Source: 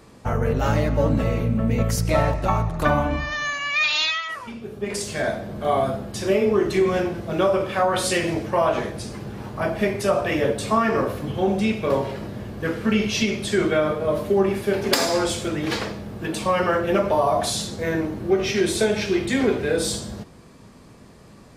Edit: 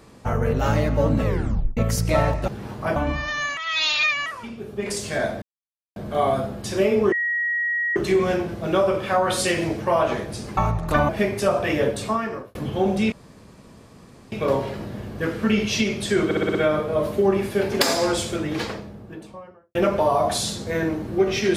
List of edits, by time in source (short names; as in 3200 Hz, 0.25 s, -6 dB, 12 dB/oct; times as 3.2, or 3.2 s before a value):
1.24 tape stop 0.53 s
2.48–3 swap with 9.23–9.71
3.61–4.3 reverse
5.46 insert silence 0.54 s
6.62 add tone 1900 Hz -20.5 dBFS 0.84 s
10.52–11.17 fade out
11.74 insert room tone 1.20 s
13.67 stutter 0.06 s, 6 plays
15.35–16.87 studio fade out